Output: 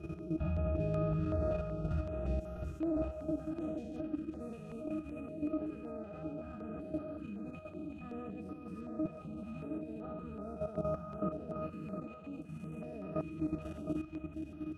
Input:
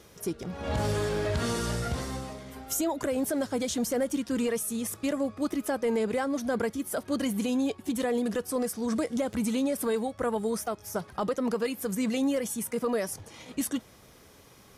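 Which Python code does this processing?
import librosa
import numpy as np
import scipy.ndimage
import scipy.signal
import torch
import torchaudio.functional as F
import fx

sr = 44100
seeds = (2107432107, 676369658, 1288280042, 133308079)

y = fx.spec_steps(x, sr, hold_ms=400)
y = fx.rider(y, sr, range_db=10, speed_s=0.5)
y = fx.octave_resonator(y, sr, note='D#', decay_s=0.14)
y = fx.level_steps(y, sr, step_db=11)
y = y + 10.0 ** (-6.5 / 20.0) * np.pad(y, (int(712 * sr / 1000.0), 0))[:len(y)]
y = fx.filter_held_notch(y, sr, hz=5.3, low_hz=280.0, high_hz=7700.0)
y = y * 10.0 ** (11.5 / 20.0)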